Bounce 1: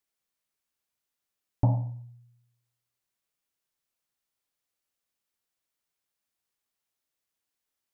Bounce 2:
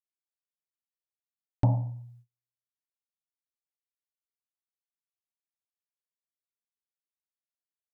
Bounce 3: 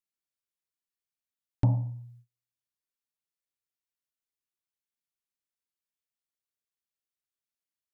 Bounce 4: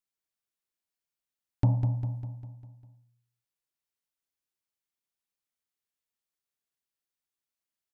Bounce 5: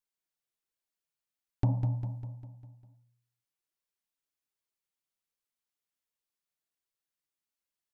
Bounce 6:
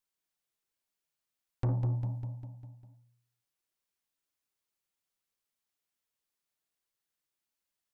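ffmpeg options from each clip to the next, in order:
-af "agate=range=0.02:threshold=0.002:ratio=16:detection=peak"
-af "equalizer=f=720:w=1.5:g=-7"
-af "aecho=1:1:200|400|600|800|1000|1200:0.422|0.219|0.114|0.0593|0.0308|0.016"
-af "flanger=delay=1.8:depth=5.1:regen=56:speed=1.3:shape=sinusoidal,volume=1.33"
-af "asoftclip=type=tanh:threshold=0.0422,volume=1.33"

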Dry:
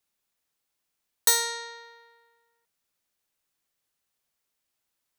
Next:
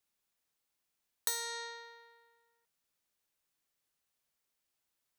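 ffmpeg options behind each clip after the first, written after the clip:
-af "acompressor=threshold=0.0282:ratio=3,volume=0.668"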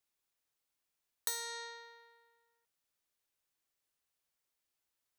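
-af "equalizer=f=190:t=o:w=0.39:g=-6,volume=0.75"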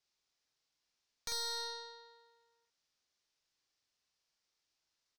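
-filter_complex "[0:a]lowpass=f=5300:t=q:w=2.4,aeval=exprs='(tanh(70.8*val(0)+0.45)-tanh(0.45))/70.8':c=same,asplit=2[s0][s1];[s1]adelay=47,volume=0.668[s2];[s0][s2]amix=inputs=2:normalize=0,volume=1.19"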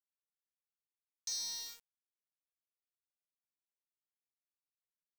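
-af "bandpass=f=5900:t=q:w=4:csg=0,aeval=exprs='val(0)*gte(abs(val(0)),0.00266)':c=same,volume=2.24"

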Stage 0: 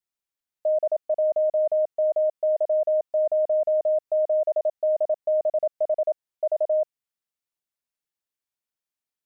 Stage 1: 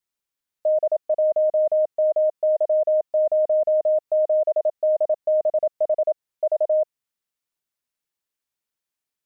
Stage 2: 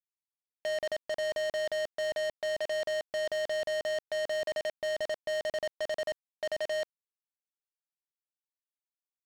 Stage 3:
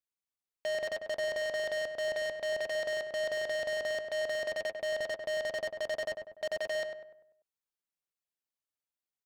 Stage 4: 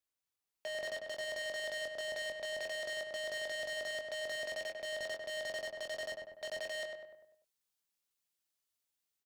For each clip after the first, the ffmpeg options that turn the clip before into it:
-af "equalizer=f=710:w=4:g=-2,volume=1.5"
-af "aresample=11025,acrusher=bits=5:mix=0:aa=0.000001,aresample=44100,asoftclip=type=hard:threshold=0.0299"
-filter_complex "[0:a]asplit=2[s0][s1];[s1]adelay=98,lowpass=f=1900:p=1,volume=0.531,asplit=2[s2][s3];[s3]adelay=98,lowpass=f=1900:p=1,volume=0.47,asplit=2[s4][s5];[s5]adelay=98,lowpass=f=1900:p=1,volume=0.47,asplit=2[s6][s7];[s7]adelay=98,lowpass=f=1900:p=1,volume=0.47,asplit=2[s8][s9];[s9]adelay=98,lowpass=f=1900:p=1,volume=0.47,asplit=2[s10][s11];[s11]adelay=98,lowpass=f=1900:p=1,volume=0.47[s12];[s0][s2][s4][s6][s8][s10][s12]amix=inputs=7:normalize=0,volume=0.891"
-filter_complex "[0:a]acrossover=split=330|2800[s0][s1][s2];[s2]dynaudnorm=f=510:g=3:m=2[s3];[s0][s1][s3]amix=inputs=3:normalize=0,alimiter=level_in=2.99:limit=0.0631:level=0:latency=1:release=407,volume=0.335,asplit=2[s4][s5];[s5]adelay=22,volume=0.501[s6];[s4][s6]amix=inputs=2:normalize=0,volume=1.12"

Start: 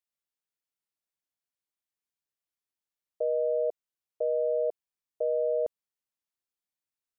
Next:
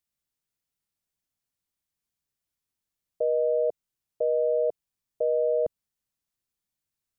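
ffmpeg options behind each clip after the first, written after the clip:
-af "bass=f=250:g=11,treble=f=4000:g=3,volume=1.33"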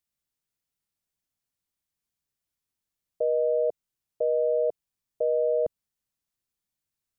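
-af anull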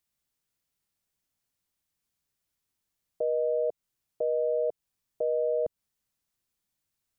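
-af "alimiter=level_in=1.06:limit=0.0631:level=0:latency=1:release=169,volume=0.944,volume=1.5"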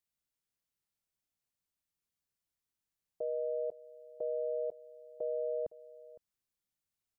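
-af "aecho=1:1:511:0.119,volume=0.398"

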